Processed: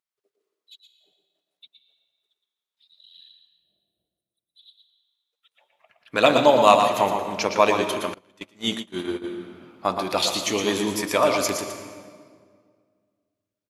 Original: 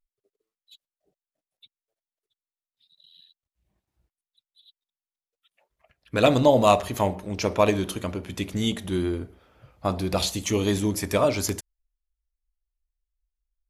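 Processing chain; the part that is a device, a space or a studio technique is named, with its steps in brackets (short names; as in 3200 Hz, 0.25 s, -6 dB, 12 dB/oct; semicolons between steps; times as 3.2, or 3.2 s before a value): 3.53–4.56 spectral gain 750–8200 Hz -22 dB; PA in a hall (HPF 200 Hz 12 dB/oct; bell 2900 Hz +6 dB 2.8 oct; echo 0.117 s -7 dB; reverb RT60 1.9 s, pre-delay 0.1 s, DRR 9 dB); 8.14–9.24 gate -24 dBFS, range -25 dB; bell 990 Hz +5 dB 1.2 oct; gain -2 dB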